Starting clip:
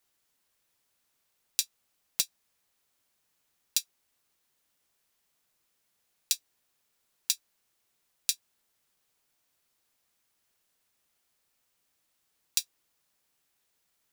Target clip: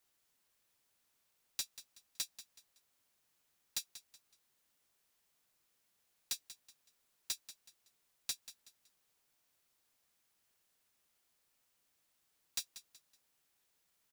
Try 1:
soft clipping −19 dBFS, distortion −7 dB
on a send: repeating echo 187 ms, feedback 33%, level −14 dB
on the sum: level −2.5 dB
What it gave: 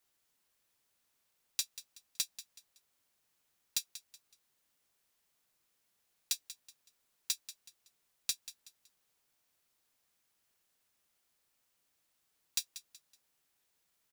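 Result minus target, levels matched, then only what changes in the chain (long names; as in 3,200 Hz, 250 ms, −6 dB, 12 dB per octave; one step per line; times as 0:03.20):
soft clipping: distortion −4 dB
change: soft clipping −28 dBFS, distortion −2 dB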